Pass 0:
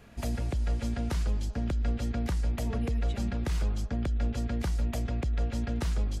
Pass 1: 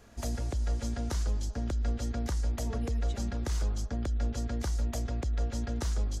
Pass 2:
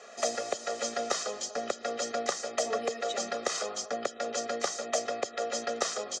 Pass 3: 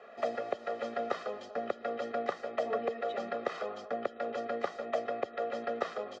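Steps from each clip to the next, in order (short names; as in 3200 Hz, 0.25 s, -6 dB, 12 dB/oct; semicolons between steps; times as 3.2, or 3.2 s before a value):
fifteen-band EQ 160 Hz -8 dB, 2500 Hz -6 dB, 6300 Hz +7 dB; gain -1 dB
elliptic band-pass 330–7200 Hz, stop band 60 dB; comb 1.6 ms, depth 89%; gain +8.5 dB
air absorption 460 m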